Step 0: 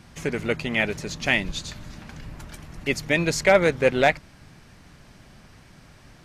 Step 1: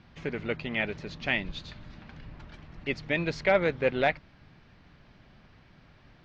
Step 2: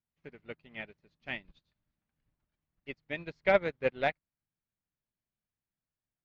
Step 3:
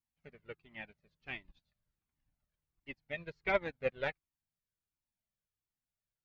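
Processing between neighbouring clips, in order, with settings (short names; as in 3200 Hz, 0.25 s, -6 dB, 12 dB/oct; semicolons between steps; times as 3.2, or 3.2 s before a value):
LPF 4300 Hz 24 dB/oct; gain -6.5 dB
upward expander 2.5:1, over -46 dBFS
cascading flanger falling 1.4 Hz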